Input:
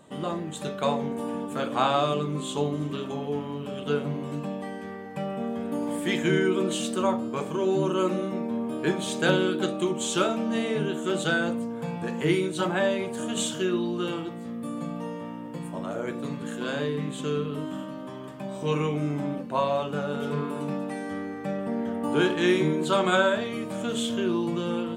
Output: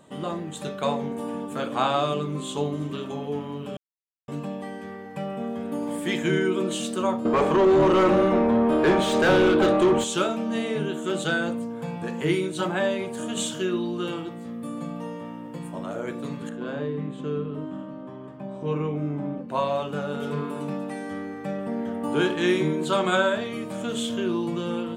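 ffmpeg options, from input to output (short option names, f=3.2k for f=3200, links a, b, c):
-filter_complex "[0:a]asettb=1/sr,asplit=3[a][b][c];[a]atrim=end=7.254[d];[b]atrim=start=7.25:end=10.04,asetpts=PTS-STARTPTS,afade=t=in:d=0.004:c=qsin,afade=t=out:st=2.786:d=0.004:c=qsin,asplit=2[e][f];[f]highpass=f=720:p=1,volume=27dB,asoftclip=type=tanh:threshold=-9dB[g];[e][g]amix=inputs=2:normalize=0,lowpass=f=1k:p=1,volume=-6dB[h];[c]atrim=start=10.036[i];[d][h]acrossfade=d=0.004:c1=hsin:c2=qsin[j];[j][i]acrossfade=d=0.004:c1=qsin:c2=hsin,asettb=1/sr,asplit=3[k][l][m];[k]atrim=end=16.494[n];[l]atrim=start=16.49:end=19.49,asetpts=PTS-STARTPTS,afade=t=in:d=0.004:c=qsin,afade=t=out:st=2.996:d=0.004:c=qsin,lowpass=f=1k:p=1[o];[m]atrim=start=19.486[p];[n][o]acrossfade=d=0.004:c1=hsin:c2=qsin[q];[q][p]acrossfade=d=0.004:c1=qsin:c2=hsin,asplit=3[r][s][t];[r]atrim=end=3.77,asetpts=PTS-STARTPTS,afade=t=out:st=3.766:d=0.004:c=hsin[u];[s]atrim=start=3.77:end=4.28,asetpts=PTS-STARTPTS,volume=0[v];[t]atrim=start=4.28,asetpts=PTS-STARTPTS,afade=t=in:d=0.004:c=hsin[w];[u][v][w]concat=n=3:v=0:a=1"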